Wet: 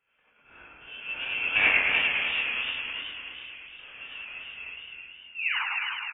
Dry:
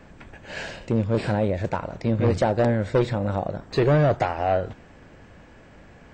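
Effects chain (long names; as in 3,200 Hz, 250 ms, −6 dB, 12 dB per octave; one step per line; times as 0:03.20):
stylus tracing distortion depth 0.38 ms
source passing by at 0:01.65, 35 m/s, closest 2 metres
spectral tilt +2 dB per octave
sound drawn into the spectrogram rise, 0:05.34–0:05.57, 480–2,600 Hz −40 dBFS
noise that follows the level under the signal 20 dB
low shelf with overshoot 530 Hz −7.5 dB, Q 3
on a send: echo with shifted repeats 297 ms, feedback 41%, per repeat −62 Hz, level −4.5 dB
on the sum: reverb whose tail is shaped and stops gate 110 ms rising, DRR −8 dB
voice inversion scrambler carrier 3,300 Hz
feedback echo with a swinging delay time 106 ms, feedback 67%, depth 135 cents, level −4 dB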